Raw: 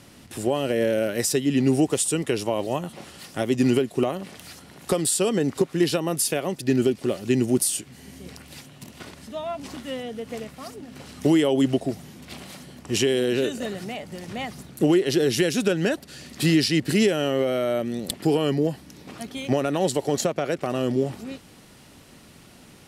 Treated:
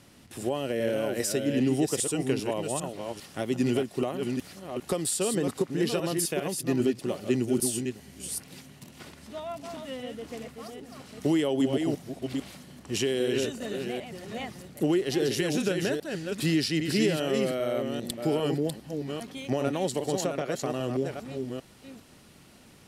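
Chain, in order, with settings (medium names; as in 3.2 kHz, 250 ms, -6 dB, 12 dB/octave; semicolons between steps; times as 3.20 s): chunks repeated in reverse 400 ms, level -5 dB; trim -6 dB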